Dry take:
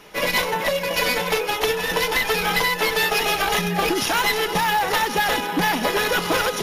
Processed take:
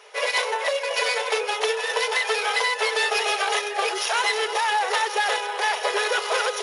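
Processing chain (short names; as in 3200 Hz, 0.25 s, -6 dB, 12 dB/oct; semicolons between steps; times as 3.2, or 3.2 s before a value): brick-wall FIR band-pass 380–11000 Hz; gain -2 dB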